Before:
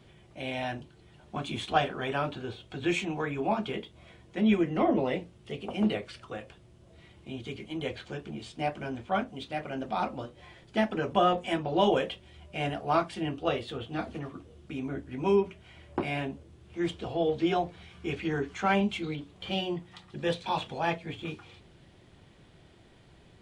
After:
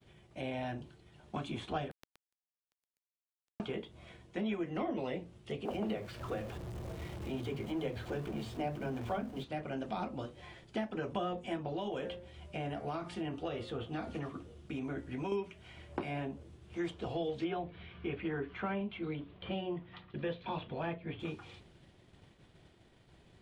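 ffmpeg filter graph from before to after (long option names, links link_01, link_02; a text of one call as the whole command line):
ffmpeg -i in.wav -filter_complex "[0:a]asettb=1/sr,asplit=3[link_01][link_02][link_03];[link_01]atrim=end=1.914[link_04];[link_02]atrim=start=1.91:end=3.6,asetpts=PTS-STARTPTS,afade=type=in:duration=0.004:curve=qsin,afade=type=out:start_time=1.686:duration=0.004:curve=qsin,highpass=160,acompressor=threshold=-40dB:ratio=20:attack=3.2:release=140:knee=1:detection=peak,acrusher=bits=3:dc=4:mix=0:aa=0.000001[link_05];[link_03]atrim=start=3.596[link_06];[link_04][link_05]acrossfade=duration=0.004:curve1=hsin:curve2=qsin[link_07];[link_07][link_06]acrossfade=duration=0.004:curve1=qsin:curve2=hsin,asettb=1/sr,asplit=3[link_08][link_09][link_10];[link_08]atrim=end=5.654[link_11];[link_09]atrim=start=5.65:end=9.44,asetpts=PTS-STARTPTS,afade=type=in:duration=0.004:curve=qsin,afade=type=out:start_time=3.786:duration=0.004:curve=qsin,aeval=exprs='val(0)+0.5*0.00708*sgn(val(0))':channel_layout=same,tiltshelf=frequency=1400:gain=5.5,acrossover=split=220[link_12][link_13];[link_12]adelay=50[link_14];[link_14][link_13]amix=inputs=2:normalize=0,atrim=end_sample=167139[link_15];[link_10]atrim=start=9.436[link_16];[link_11][link_15]acrossfade=duration=0.004:curve1=hsin:curve2=qsin[link_17];[link_17][link_16]acrossfade=duration=0.004:curve1=qsin:curve2=hsin,asettb=1/sr,asplit=3[link_18][link_19][link_20];[link_18]atrim=end=11.694[link_21];[link_19]atrim=start=11.69:end=15.32,asetpts=PTS-STARTPTS,afade=type=in:duration=0.004:curve=qsin,afade=type=out:start_time=3.626:duration=0.004:curve=qsin,bandreject=frequency=177:width_type=h:width=4,bandreject=frequency=354:width_type=h:width=4,bandreject=frequency=531:width_type=h:width=4,bandreject=frequency=708:width_type=h:width=4,bandreject=frequency=885:width_type=h:width=4,bandreject=frequency=1062:width_type=h:width=4,bandreject=frequency=1239:width_type=h:width=4,bandreject=frequency=1416:width_type=h:width=4,bandreject=frequency=1593:width_type=h:width=4,bandreject=frequency=1770:width_type=h:width=4,bandreject=frequency=1947:width_type=h:width=4,bandreject=frequency=2124:width_type=h:width=4,bandreject=frequency=2301:width_type=h:width=4,acompressor=threshold=-30dB:ratio=4:attack=3.2:release=140:knee=1:detection=peak[link_22];[link_20]atrim=start=15.316[link_23];[link_21][link_22]acrossfade=duration=0.004:curve1=hsin:curve2=qsin[link_24];[link_24][link_23]acrossfade=duration=0.004:curve1=qsin:curve2=hsin,asettb=1/sr,asplit=3[link_25][link_26][link_27];[link_25]atrim=end=17.444[link_28];[link_26]atrim=start=17.44:end=21.2,asetpts=PTS-STARTPTS,afade=type=in:duration=0.004:curve=qsin,afade=type=out:start_time=3.756:duration=0.004:curve=qsin,lowpass=frequency=3400:width=0.5412,lowpass=frequency=3400:width=1.3066,bandreject=frequency=810:width=9.7[link_29];[link_27]atrim=start=21.196[link_30];[link_28][link_29]acrossfade=duration=0.004:curve1=hsin:curve2=qsin[link_31];[link_31][link_30]acrossfade=duration=0.004:curve1=qsin:curve2=hsin,agate=range=-33dB:threshold=-51dB:ratio=3:detection=peak,acrossover=split=470|1600[link_32][link_33][link_34];[link_32]acompressor=threshold=-38dB:ratio=4[link_35];[link_33]acompressor=threshold=-42dB:ratio=4[link_36];[link_34]acompressor=threshold=-51dB:ratio=4[link_37];[link_35][link_36][link_37]amix=inputs=3:normalize=0" out.wav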